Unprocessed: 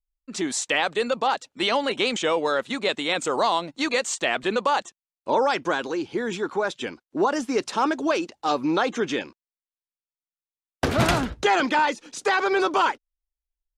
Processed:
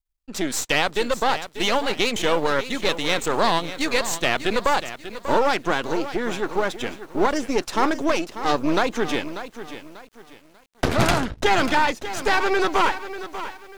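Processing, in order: half-wave gain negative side -12 dB; lo-fi delay 0.591 s, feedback 35%, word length 8-bit, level -12 dB; gain +4.5 dB

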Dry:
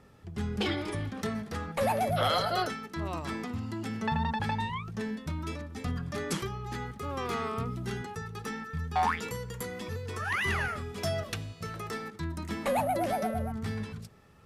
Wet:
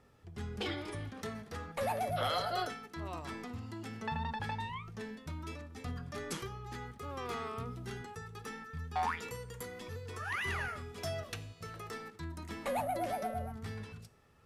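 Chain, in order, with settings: bell 200 Hz -5.5 dB 0.66 oct; resonator 240 Hz, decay 0.46 s, harmonics all, mix 60%; gain +1 dB

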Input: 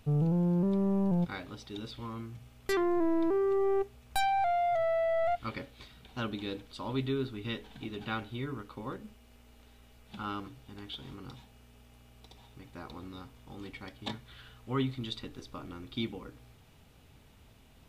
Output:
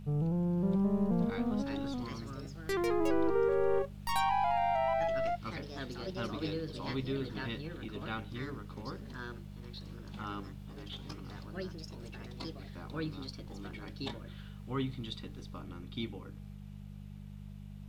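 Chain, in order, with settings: echoes that change speed 0.575 s, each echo +3 st, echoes 2; buzz 50 Hz, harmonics 4, -43 dBFS -1 dB/oct; gain -4 dB

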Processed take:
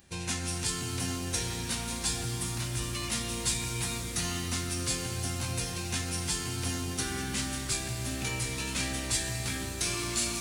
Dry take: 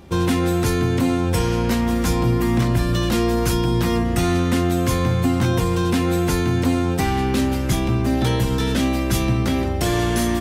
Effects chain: formant shift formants -6 st; pre-emphasis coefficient 0.9; shimmer reverb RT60 3.8 s, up +7 st, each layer -8 dB, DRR 4 dB; gain +1.5 dB

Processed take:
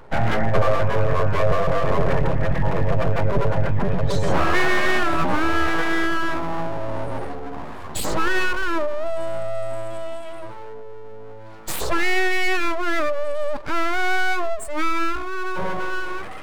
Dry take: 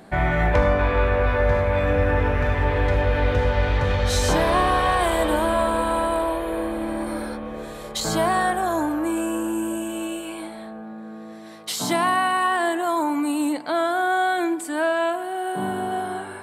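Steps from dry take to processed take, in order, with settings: spectral contrast raised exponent 1.8; full-wave rectifier; gain +4 dB

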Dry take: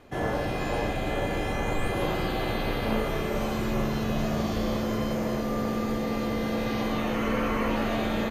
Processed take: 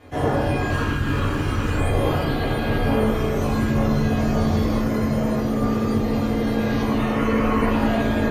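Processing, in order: 0.7–1.77 minimum comb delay 0.68 ms; reverb removal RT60 1.5 s; reverb RT60 1.1 s, pre-delay 5 ms, DRR -7.5 dB

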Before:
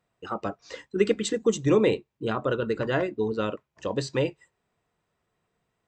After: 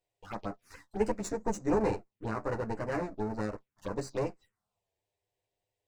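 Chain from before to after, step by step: minimum comb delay 9.9 ms; envelope phaser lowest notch 220 Hz, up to 3300 Hz, full sweep at -27 dBFS; record warp 33 1/3 rpm, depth 100 cents; gain -5.5 dB

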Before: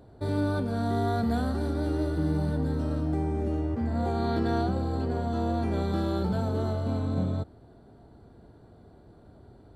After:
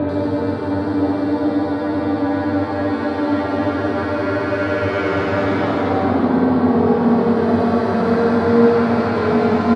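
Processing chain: limiter -26.5 dBFS, peak gain reduction 11 dB; AGC gain up to 5 dB; sine folder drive 5 dB, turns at -22.5 dBFS; Paulstretch 21×, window 0.10 s, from 0.32; BPF 180–4100 Hz; bands offset in time lows, highs 90 ms, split 3200 Hz; on a send at -3.5 dB: reverb RT60 0.85 s, pre-delay 3 ms; on the sum: gain +9 dB

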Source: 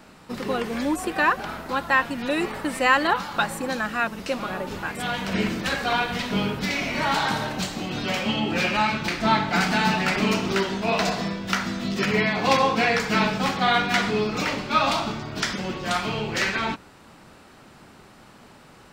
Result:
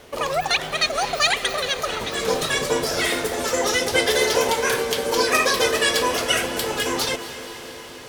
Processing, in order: low shelf 260 Hz +7 dB; diffused feedback echo 0.594 s, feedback 76%, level -14 dB; speed mistake 33 rpm record played at 78 rpm

